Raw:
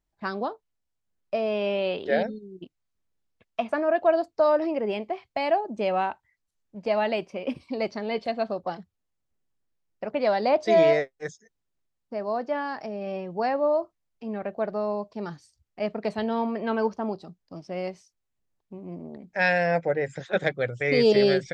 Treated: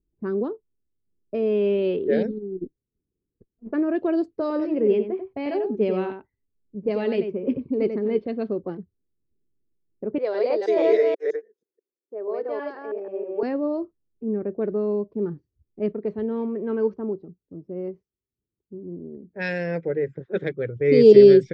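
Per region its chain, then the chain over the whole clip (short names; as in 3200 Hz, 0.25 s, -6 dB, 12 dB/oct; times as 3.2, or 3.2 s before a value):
2.31–3.72 negative-ratio compressor -38 dBFS, ratio -0.5 + rippled Chebyshev low-pass 5700 Hz, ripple 3 dB + running maximum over 9 samples
4.41–8.15 notch 330 Hz, Q 8.2 + echo 92 ms -7.5 dB
10.18–13.43 reverse delay 0.161 s, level 0 dB + HPF 480 Hz 24 dB/oct + tilt -2 dB/oct
15.92–20.76 HPF 55 Hz + bell 240 Hz -5.5 dB 2.6 oct
whole clip: low-pass opened by the level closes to 450 Hz, open at -18 dBFS; resonant low shelf 530 Hz +9.5 dB, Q 3; gain -5 dB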